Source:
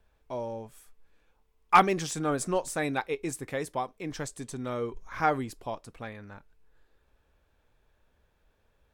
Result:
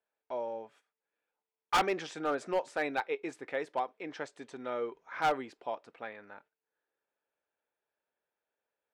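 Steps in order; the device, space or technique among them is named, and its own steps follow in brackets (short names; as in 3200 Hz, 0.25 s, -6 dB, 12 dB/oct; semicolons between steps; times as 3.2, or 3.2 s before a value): walkie-talkie (BPF 410–2900 Hz; hard clip -22 dBFS, distortion -6 dB; gate -60 dBFS, range -14 dB); notch 1100 Hz, Q 10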